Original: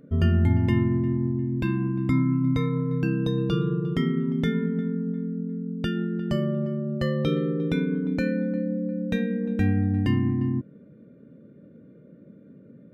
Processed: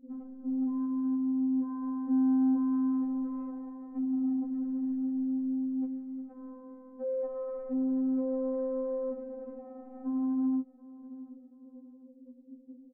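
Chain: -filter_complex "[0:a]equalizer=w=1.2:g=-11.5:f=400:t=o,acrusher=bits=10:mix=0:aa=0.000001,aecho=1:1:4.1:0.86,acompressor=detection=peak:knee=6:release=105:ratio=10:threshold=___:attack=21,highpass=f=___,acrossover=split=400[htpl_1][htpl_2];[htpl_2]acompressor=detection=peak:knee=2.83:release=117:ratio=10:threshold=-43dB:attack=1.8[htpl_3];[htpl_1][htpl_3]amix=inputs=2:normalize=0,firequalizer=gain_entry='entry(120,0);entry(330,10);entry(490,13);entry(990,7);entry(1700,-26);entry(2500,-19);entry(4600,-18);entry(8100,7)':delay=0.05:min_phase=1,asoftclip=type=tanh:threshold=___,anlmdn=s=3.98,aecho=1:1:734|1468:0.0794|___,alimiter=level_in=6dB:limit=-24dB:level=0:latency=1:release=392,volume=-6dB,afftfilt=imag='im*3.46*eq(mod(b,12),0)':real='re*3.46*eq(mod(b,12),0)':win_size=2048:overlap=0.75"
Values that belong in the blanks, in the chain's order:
-31dB, 47, -25.5dB, 0.0262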